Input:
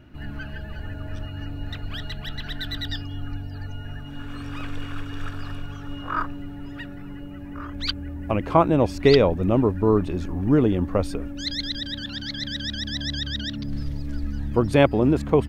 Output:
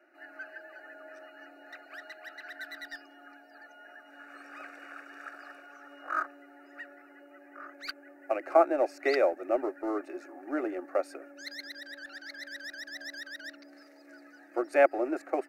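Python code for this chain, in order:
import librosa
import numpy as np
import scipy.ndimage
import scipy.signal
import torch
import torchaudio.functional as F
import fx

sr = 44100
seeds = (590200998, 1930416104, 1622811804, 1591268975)

p1 = scipy.signal.sosfilt(scipy.signal.butter(8, 360.0, 'highpass', fs=sr, output='sos'), x)
p2 = fx.high_shelf(p1, sr, hz=5100.0, db=-9.0)
p3 = np.sign(p2) * np.maximum(np.abs(p2) - 10.0 ** (-31.5 / 20.0), 0.0)
p4 = p2 + (p3 * librosa.db_to_amplitude(-10.0))
p5 = fx.fixed_phaser(p4, sr, hz=670.0, stages=8)
y = p5 * librosa.db_to_amplitude(-2.5)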